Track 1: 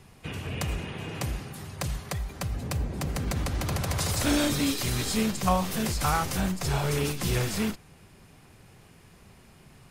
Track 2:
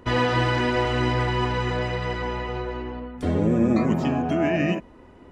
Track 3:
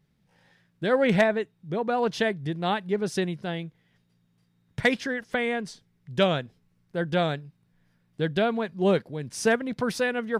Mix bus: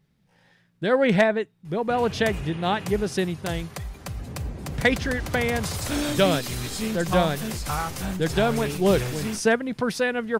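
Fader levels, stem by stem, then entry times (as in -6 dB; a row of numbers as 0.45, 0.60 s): -2.0 dB, off, +2.0 dB; 1.65 s, off, 0.00 s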